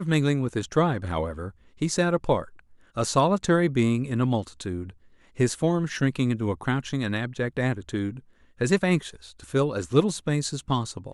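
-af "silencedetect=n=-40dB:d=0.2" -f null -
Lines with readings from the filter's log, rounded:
silence_start: 1.50
silence_end: 1.81 | silence_duration: 0.31
silence_start: 2.59
silence_end: 2.97 | silence_duration: 0.37
silence_start: 4.90
silence_end: 5.37 | silence_duration: 0.46
silence_start: 8.20
silence_end: 8.60 | silence_duration: 0.41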